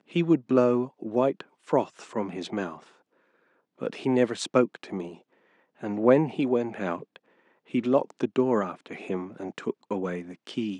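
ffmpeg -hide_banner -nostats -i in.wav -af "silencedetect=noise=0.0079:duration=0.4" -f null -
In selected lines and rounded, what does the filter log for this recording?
silence_start: 2.83
silence_end: 3.81 | silence_duration: 0.98
silence_start: 5.17
silence_end: 5.81 | silence_duration: 0.64
silence_start: 7.16
silence_end: 7.71 | silence_duration: 0.54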